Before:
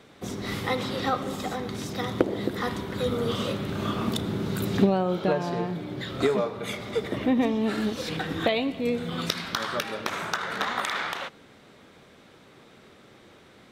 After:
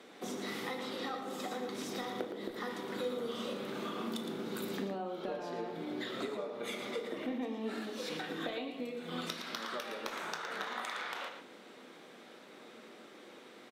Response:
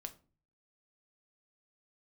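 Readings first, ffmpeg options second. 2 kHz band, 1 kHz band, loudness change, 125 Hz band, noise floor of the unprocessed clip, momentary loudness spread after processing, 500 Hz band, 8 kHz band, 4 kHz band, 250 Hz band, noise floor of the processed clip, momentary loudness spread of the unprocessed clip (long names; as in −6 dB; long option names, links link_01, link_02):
−9.5 dB, −10.5 dB, −11.5 dB, −19.5 dB, −53 dBFS, 15 LU, −11.0 dB, −8.5 dB, −9.5 dB, −12.5 dB, −55 dBFS, 8 LU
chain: -filter_complex "[0:a]highpass=frequency=220:width=0.5412,highpass=frequency=220:width=1.3066,acompressor=threshold=-36dB:ratio=6,aecho=1:1:114:0.376[link_01];[1:a]atrim=start_sample=2205,asetrate=32193,aresample=44100[link_02];[link_01][link_02]afir=irnorm=-1:irlink=0,volume=1dB"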